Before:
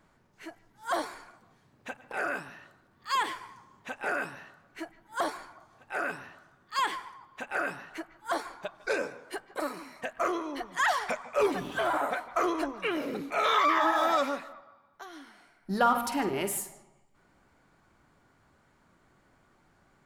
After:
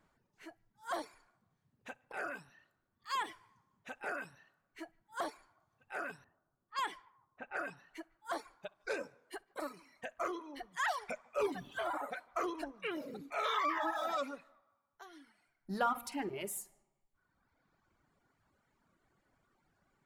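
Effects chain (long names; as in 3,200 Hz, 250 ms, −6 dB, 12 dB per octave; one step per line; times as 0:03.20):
flutter between parallel walls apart 11 metres, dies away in 0.23 s
reverb reduction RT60 1.5 s
0:06.24–0:07.77: low-pass that shuts in the quiet parts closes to 860 Hz, open at −27 dBFS
level −8 dB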